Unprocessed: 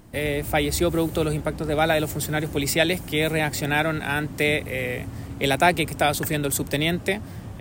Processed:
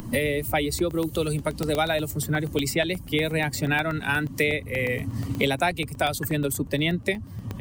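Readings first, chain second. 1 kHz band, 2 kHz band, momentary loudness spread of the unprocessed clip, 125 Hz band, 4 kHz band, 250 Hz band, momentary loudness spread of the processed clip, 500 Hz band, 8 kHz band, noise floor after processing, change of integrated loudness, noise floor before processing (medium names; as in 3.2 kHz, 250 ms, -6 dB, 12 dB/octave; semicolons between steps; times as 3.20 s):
-4.0 dB, -1.5 dB, 7 LU, -0.5 dB, -2.5 dB, -1.5 dB, 3 LU, -2.5 dB, -3.5 dB, -39 dBFS, -2.0 dB, -38 dBFS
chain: expander on every frequency bin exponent 1.5; crackling interface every 0.12 s, samples 64, zero, from 0.79 s; three bands compressed up and down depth 100%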